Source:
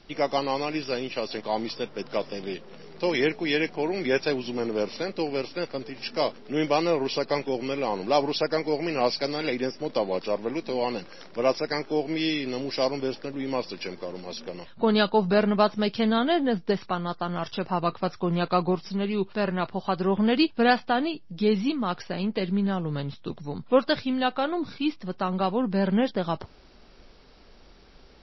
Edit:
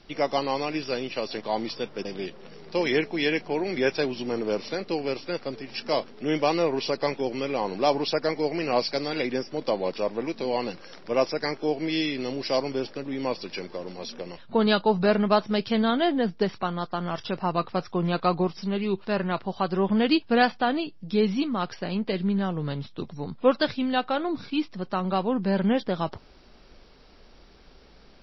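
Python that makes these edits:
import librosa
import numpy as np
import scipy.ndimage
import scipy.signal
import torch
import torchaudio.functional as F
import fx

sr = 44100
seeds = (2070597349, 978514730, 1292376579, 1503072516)

y = fx.edit(x, sr, fx.cut(start_s=2.05, length_s=0.28), tone=tone)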